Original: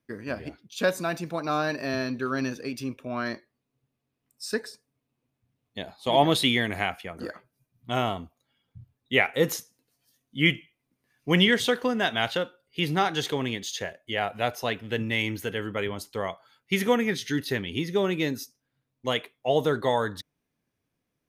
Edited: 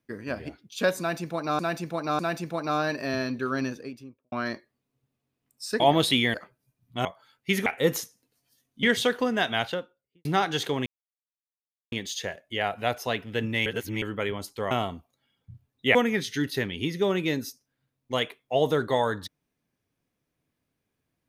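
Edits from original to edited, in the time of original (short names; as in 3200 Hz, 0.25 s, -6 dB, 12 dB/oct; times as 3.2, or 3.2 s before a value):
0.99–1.59 loop, 3 plays
2.33–3.12 studio fade out
4.6–6.12 cut
6.66–7.27 cut
7.98–9.22 swap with 16.28–16.89
10.39–11.46 cut
12.12–12.88 studio fade out
13.49 insert silence 1.06 s
15.23–15.59 reverse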